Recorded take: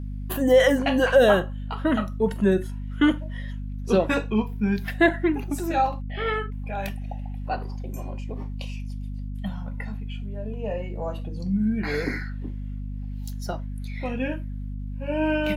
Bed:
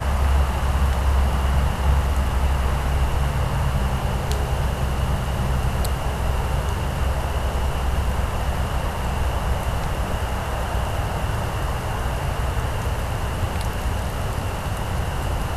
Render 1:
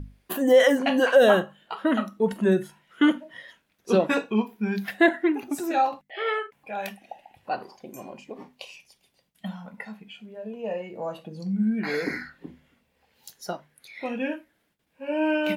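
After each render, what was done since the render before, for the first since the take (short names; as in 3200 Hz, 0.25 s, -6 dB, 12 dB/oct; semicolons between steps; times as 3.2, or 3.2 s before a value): notches 50/100/150/200/250 Hz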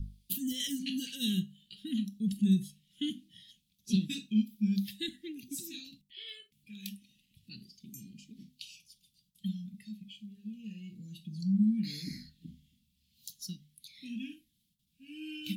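elliptic band-stop 200–3500 Hz, stop band 60 dB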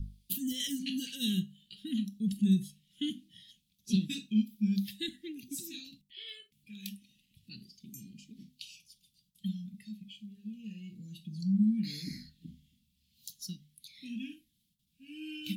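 nothing audible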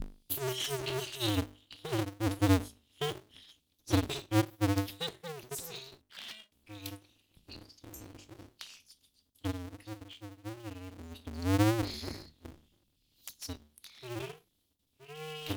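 cycle switcher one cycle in 2, inverted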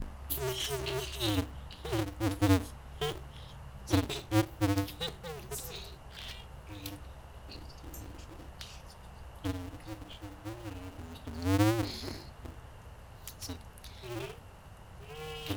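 add bed -26 dB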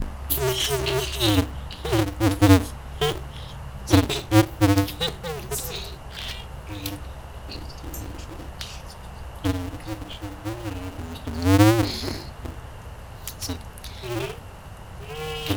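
gain +11 dB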